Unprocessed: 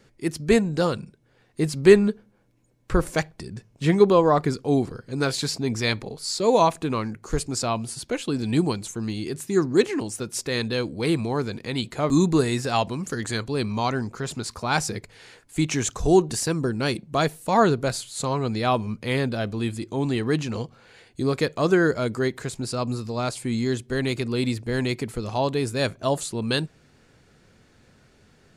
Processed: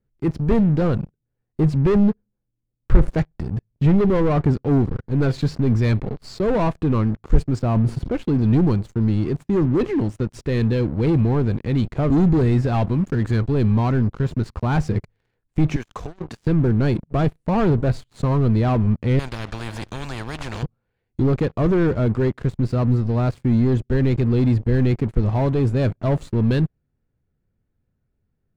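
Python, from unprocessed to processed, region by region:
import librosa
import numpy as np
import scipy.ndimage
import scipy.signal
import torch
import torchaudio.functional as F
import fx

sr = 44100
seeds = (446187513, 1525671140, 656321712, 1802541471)

y = fx.chain(x, sr, fx.high_shelf(hz=2200.0, db=-10.0),
    fx.sustainer(db_per_s=41.0), at=(7.59, 8.14))
y = fx.chain(y, sr, fx.highpass(hz=1200.0, slope=6),
    fx.over_compress(threshold_db=-37.0, ratio=-1.0), at=(15.76, 16.46))
y = fx.chain(y, sr, fx.comb(ms=1.2, depth=0.5),
    fx.spectral_comp(ratio=10.0), at=(19.19, 20.63))
y = fx.high_shelf(y, sr, hz=4900.0, db=-9.5)
y = fx.leveller(y, sr, passes=5)
y = fx.riaa(y, sr, side='playback')
y = F.gain(torch.from_numpy(y), -16.5).numpy()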